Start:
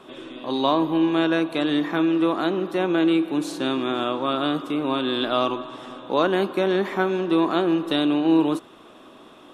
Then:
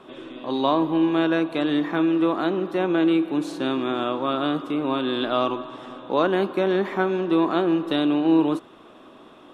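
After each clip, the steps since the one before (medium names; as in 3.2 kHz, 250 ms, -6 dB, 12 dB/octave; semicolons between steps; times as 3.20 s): treble shelf 4.2 kHz -8 dB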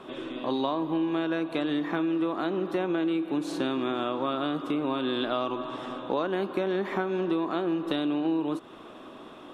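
compression, threshold -27 dBFS, peak gain reduction 12.5 dB; trim +2 dB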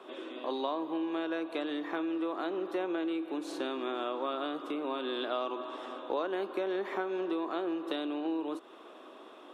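ladder high-pass 270 Hz, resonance 20%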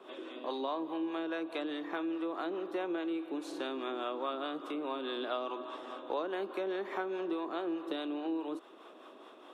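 harmonic tremolo 4.8 Hz, depth 50%, crossover 500 Hz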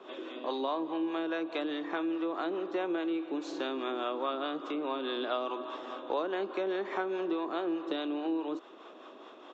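resampled via 16 kHz; trim +3 dB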